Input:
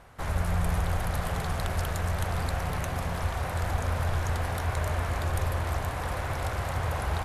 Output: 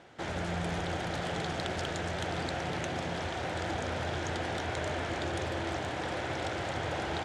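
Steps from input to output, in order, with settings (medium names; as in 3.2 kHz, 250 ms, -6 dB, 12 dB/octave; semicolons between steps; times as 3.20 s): cabinet simulation 160–7300 Hz, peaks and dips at 330 Hz +9 dB, 1.1 kHz -9 dB, 3.3 kHz +5 dB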